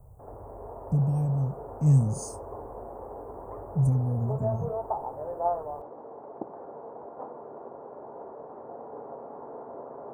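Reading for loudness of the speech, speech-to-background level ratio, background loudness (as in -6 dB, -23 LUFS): -27.0 LUFS, 11.5 dB, -38.5 LUFS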